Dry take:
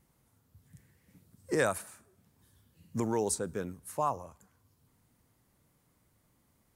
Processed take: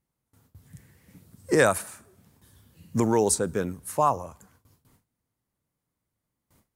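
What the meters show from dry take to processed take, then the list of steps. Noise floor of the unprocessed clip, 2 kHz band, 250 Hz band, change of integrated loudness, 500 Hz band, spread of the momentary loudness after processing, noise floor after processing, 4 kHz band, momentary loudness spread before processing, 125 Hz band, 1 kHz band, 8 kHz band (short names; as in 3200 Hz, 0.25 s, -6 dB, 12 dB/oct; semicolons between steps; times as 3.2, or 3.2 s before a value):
-72 dBFS, +8.5 dB, +8.5 dB, +8.5 dB, +8.5 dB, 12 LU, -84 dBFS, +8.5 dB, 12 LU, +8.5 dB, +8.5 dB, +8.5 dB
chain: gate with hold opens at -58 dBFS; gain +8.5 dB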